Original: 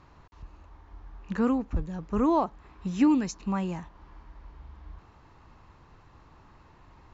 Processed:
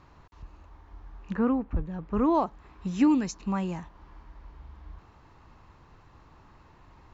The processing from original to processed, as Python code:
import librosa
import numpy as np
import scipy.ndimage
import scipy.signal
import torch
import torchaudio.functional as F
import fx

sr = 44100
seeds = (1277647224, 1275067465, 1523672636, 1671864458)

y = fx.lowpass(x, sr, hz=fx.line((1.34, 2000.0), (2.33, 3700.0)), slope=12, at=(1.34, 2.33), fade=0.02)